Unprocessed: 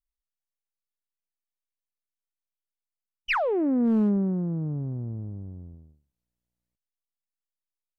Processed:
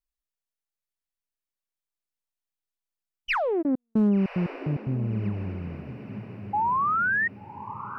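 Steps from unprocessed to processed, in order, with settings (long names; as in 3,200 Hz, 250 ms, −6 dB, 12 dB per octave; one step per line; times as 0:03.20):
0:03.61–0:04.92: gate pattern "x..xxx.x..x." 148 BPM −60 dB
speech leveller within 4 dB 2 s
0:06.53–0:07.28: sound drawn into the spectrogram rise 810–1,900 Hz −26 dBFS
feedback delay with all-pass diffusion 1,121 ms, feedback 52%, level −12 dB
level +2 dB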